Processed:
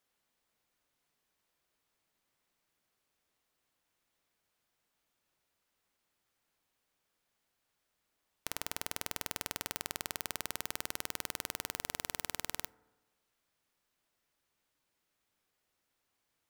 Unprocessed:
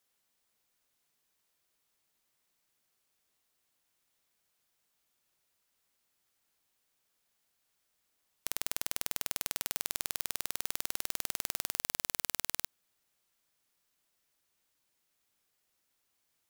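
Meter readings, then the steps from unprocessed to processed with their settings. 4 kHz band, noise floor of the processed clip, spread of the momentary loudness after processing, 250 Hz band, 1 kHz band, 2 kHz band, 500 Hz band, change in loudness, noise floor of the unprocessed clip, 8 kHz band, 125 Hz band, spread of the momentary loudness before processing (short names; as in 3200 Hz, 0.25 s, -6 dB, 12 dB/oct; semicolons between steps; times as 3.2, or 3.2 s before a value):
-2.5 dB, -83 dBFS, 3 LU, +2.5 dB, +1.5 dB, 0.0 dB, +1.5 dB, -4.5 dB, -79 dBFS, -5.0 dB, +2.0 dB, 3 LU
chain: high shelf 3700 Hz -8.5 dB; FDN reverb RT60 1.2 s, low-frequency decay 0.95×, high-frequency decay 0.25×, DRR 19 dB; gain +2 dB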